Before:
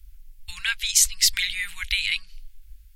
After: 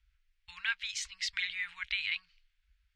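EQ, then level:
high-pass filter 650 Hz 6 dB per octave
low-pass filter 1,300 Hz 6 dB per octave
high-frequency loss of the air 110 metres
0.0 dB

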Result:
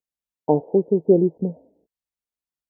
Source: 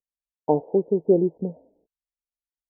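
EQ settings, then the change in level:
high-pass filter 150 Hz 6 dB per octave
low-shelf EQ 250 Hz +10.5 dB
0.0 dB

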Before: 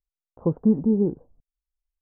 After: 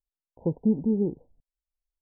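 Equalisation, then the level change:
linear-phase brick-wall low-pass 1,000 Hz
−4.0 dB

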